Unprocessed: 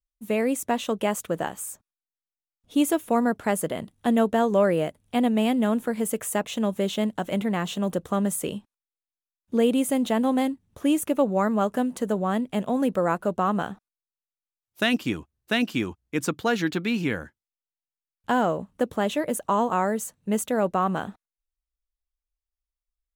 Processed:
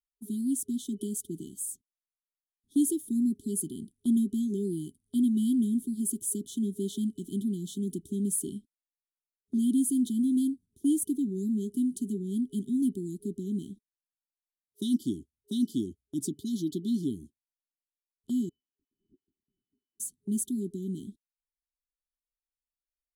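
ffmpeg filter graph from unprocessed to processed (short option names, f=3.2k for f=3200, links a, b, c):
-filter_complex "[0:a]asettb=1/sr,asplit=3[a][b][c];[a]atrim=end=18.494[d];[b]atrim=start=18.49:end=20,asetpts=PTS-STARTPTS,afade=t=in:d=0.004:c=qsin,afade=t=out:st=1.506:d=0.004:c=qsin,acompressor=threshold=-38dB:ratio=3:attack=3.2:release=140:knee=1:detection=peak,lowpass=f=2.6k:t=q:w=0.5098,lowpass=f=2.6k:t=q:w=0.6013,lowpass=f=2.6k:t=q:w=0.9,lowpass=f=2.6k:t=q:w=2.563,afreqshift=-3000[e];[c]atrim=start=19.996[f];[d][e]acrossfade=d=0.004:c1=hsin:c2=qsin[g];[g][f]acrossfade=d=0.004:c1=qsin:c2=hsin,afftfilt=real='re*(1-between(b*sr/4096,410,3000))':imag='im*(1-between(b*sr/4096,410,3000))':win_size=4096:overlap=0.75,agate=range=-7dB:threshold=-44dB:ratio=16:detection=peak,equalizer=f=250:t=o:w=0.67:g=7,equalizer=f=630:t=o:w=0.67:g=6,equalizer=f=2.5k:t=o:w=0.67:g=-9,equalizer=f=10k:t=o:w=0.67:g=11,volume=-8.5dB"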